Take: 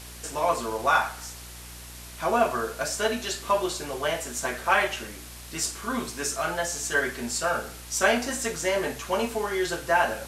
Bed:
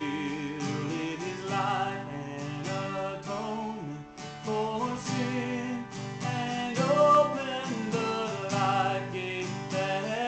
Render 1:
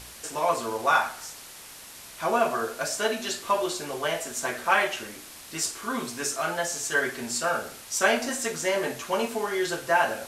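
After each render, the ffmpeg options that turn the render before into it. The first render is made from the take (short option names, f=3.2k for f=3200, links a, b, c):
-af "bandreject=f=60:t=h:w=4,bandreject=f=120:t=h:w=4,bandreject=f=180:t=h:w=4,bandreject=f=240:t=h:w=4,bandreject=f=300:t=h:w=4,bandreject=f=360:t=h:w=4,bandreject=f=420:t=h:w=4,bandreject=f=480:t=h:w=4,bandreject=f=540:t=h:w=4,bandreject=f=600:t=h:w=4,bandreject=f=660:t=h:w=4,bandreject=f=720:t=h:w=4"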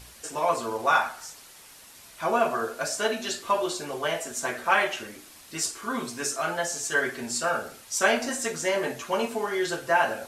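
-af "afftdn=nr=6:nf=-45"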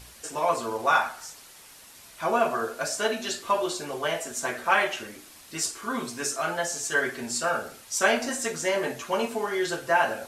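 -af anull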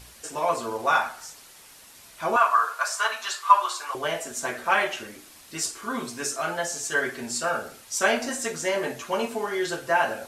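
-filter_complex "[0:a]asettb=1/sr,asplit=3[a][b][c];[a]atrim=end=2.364[d];[b]atrim=start=2.36:end=3.95,asetpts=PTS-STARTPTS,afade=t=in:d=0.004:c=qsin,afade=t=out:st=1.586:d=0.004:c=qsin,highpass=f=1.1k:t=q:w=4.5[e];[c]atrim=start=3.946[f];[d][e]acrossfade=d=0.004:c1=hsin:c2=qsin[g];[g][f]acrossfade=d=0.004:c1=qsin:c2=hsin"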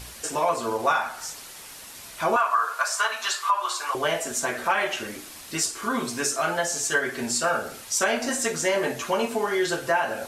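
-filter_complex "[0:a]asplit=2[a][b];[b]acompressor=threshold=-34dB:ratio=6,volume=2dB[c];[a][c]amix=inputs=2:normalize=0,alimiter=limit=-12dB:level=0:latency=1:release=192"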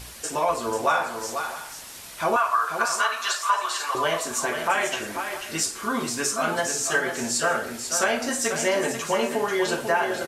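-af "aecho=1:1:491|658:0.422|0.141"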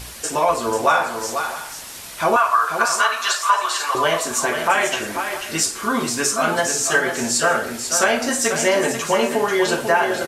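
-af "volume=5.5dB"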